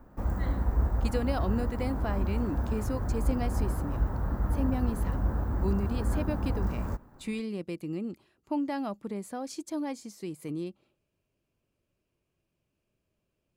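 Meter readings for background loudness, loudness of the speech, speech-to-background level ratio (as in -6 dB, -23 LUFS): -32.0 LUFS, -35.5 LUFS, -3.5 dB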